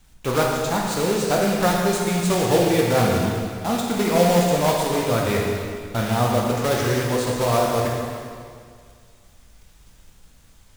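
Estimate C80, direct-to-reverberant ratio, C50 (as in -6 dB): 1.5 dB, -2.5 dB, 0.0 dB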